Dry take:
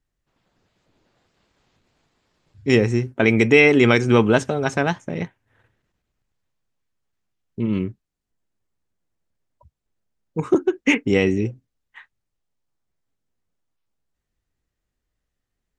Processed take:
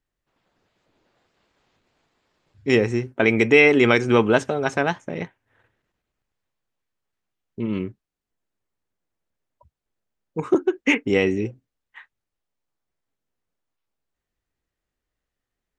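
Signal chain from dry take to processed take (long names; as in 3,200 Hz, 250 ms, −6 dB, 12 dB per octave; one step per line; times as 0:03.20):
bass and treble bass −6 dB, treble −4 dB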